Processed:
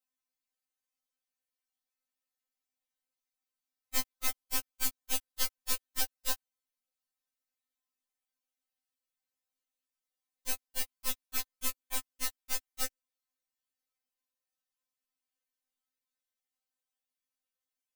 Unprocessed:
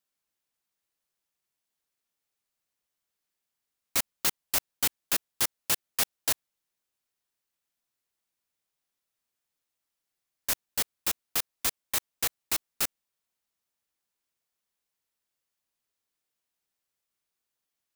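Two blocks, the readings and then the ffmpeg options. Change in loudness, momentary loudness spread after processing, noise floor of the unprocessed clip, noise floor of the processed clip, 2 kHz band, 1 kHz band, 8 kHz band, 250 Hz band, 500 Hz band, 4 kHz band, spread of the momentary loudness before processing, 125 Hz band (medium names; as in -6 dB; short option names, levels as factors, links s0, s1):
-6.0 dB, 5 LU, under -85 dBFS, under -85 dBFS, -6.5 dB, -5.5 dB, -6.0 dB, -5.0 dB, -7.5 dB, -6.0 dB, 5 LU, no reading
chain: -af "aeval=exprs='0.266*(cos(1*acos(clip(val(0)/0.266,-1,1)))-cos(1*PI/2))+0.0335*(cos(3*acos(clip(val(0)/0.266,-1,1)))-cos(3*PI/2))+0.0376*(cos(4*acos(clip(val(0)/0.266,-1,1)))-cos(4*PI/2))+0.00531*(cos(8*acos(clip(val(0)/0.266,-1,1)))-cos(8*PI/2))':c=same,afftfilt=real='re*3.46*eq(mod(b,12),0)':imag='im*3.46*eq(mod(b,12),0)':win_size=2048:overlap=0.75,volume=0.841"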